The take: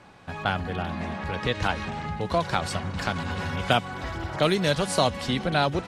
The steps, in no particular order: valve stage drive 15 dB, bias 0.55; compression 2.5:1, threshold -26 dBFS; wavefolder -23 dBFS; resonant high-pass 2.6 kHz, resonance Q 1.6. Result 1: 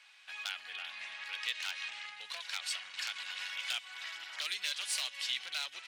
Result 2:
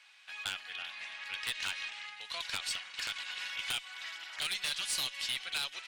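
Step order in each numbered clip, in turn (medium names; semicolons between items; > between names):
compression > valve stage > wavefolder > resonant high-pass; resonant high-pass > compression > wavefolder > valve stage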